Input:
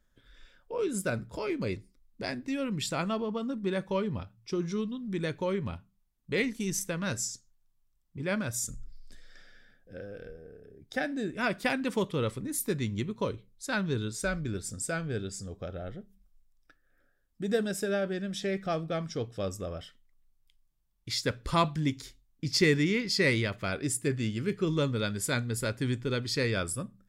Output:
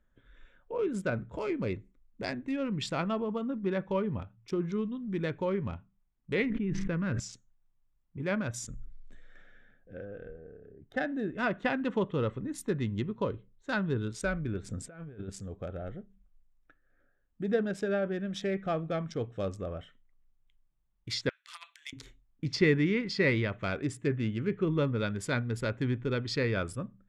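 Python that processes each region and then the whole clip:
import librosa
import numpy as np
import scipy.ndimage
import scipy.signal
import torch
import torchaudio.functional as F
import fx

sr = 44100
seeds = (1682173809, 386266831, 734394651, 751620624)

y = fx.chain(x, sr, fx.lowpass(hz=1900.0, slope=12),
    fx.peak_eq(hz=760.0, db=-10.0, octaves=1.3),
    fx.env_flatten(amount_pct=100), at=(6.5, 7.2))
y = fx.chain(y, sr, fx.notch(hz=2300.0, q=8.3),
    fx.env_lowpass(base_hz=2400.0, full_db=-26.0), at=(10.05, 14.08))
y = fx.chain(y, sr, fx.lowpass(hz=2600.0, slope=6),
    fx.over_compress(threshold_db=-39.0, ratio=-0.5), at=(14.62, 15.3))
y = fx.chain(y, sr, fx.bessel_highpass(hz=2600.0, order=4),
    fx.over_compress(threshold_db=-41.0, ratio=-0.5), at=(21.29, 21.93))
y = fx.wiener(y, sr, points=9)
y = fx.env_lowpass_down(y, sr, base_hz=2700.0, full_db=-25.5)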